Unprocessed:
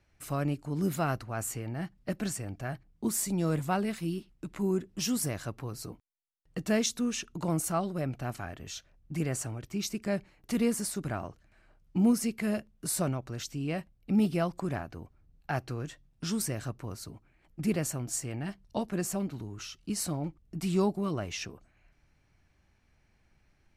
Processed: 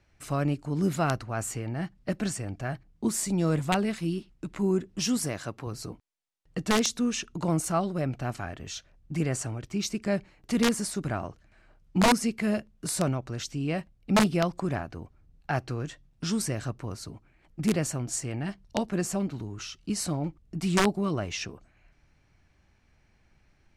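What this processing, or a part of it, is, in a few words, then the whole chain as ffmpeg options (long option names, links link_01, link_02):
overflowing digital effects unit: -filter_complex "[0:a]asettb=1/sr,asplit=3[link_01][link_02][link_03];[link_01]atrim=end=5.244[link_04];[link_02]atrim=start=5.24:end=5.67,asetpts=PTS-STARTPTS,afade=type=in:duration=0.004:curve=qsin,afade=type=out:start_time=0.426:duration=0.004:curve=qsin,highpass=frequency=160:poles=1[link_05];[link_03]atrim=start=5.666[link_06];[link_04][link_05]acrossfade=duration=0.004:curve1=hsin:curve2=qsin[link_07];[link_07][link_06]acrossfade=duration=0.004:curve1=qsin:curve2=hsin,aeval=exprs='(mod(8.91*val(0)+1,2)-1)/8.91':channel_layout=same,lowpass=8900,volume=3.5dB"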